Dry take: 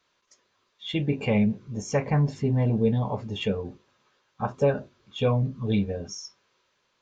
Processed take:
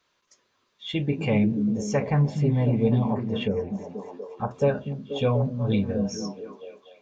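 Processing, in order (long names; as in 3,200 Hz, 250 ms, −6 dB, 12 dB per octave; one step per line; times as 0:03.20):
0:03.08–0:04.51: treble cut that deepens with the level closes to 910 Hz, closed at −23 dBFS
echo through a band-pass that steps 242 ms, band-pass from 190 Hz, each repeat 0.7 octaves, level −2 dB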